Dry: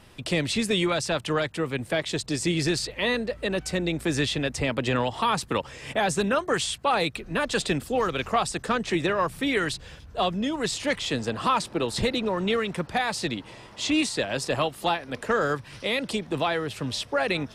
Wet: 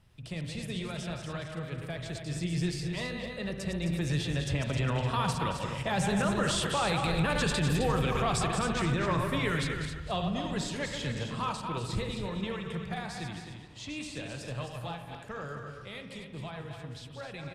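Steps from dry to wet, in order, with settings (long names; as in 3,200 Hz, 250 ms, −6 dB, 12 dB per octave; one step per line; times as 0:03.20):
feedback delay that plays each chunk backwards 113 ms, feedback 40%, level −6 dB
source passing by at 0:07.47, 6 m/s, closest 6.7 metres
low shelf with overshoot 200 Hz +8.5 dB, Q 1.5
brickwall limiter −21 dBFS, peak gain reduction 10 dB
single-tap delay 262 ms −7.5 dB
spring reverb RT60 1.1 s, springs 41/59 ms, chirp 70 ms, DRR 8.5 dB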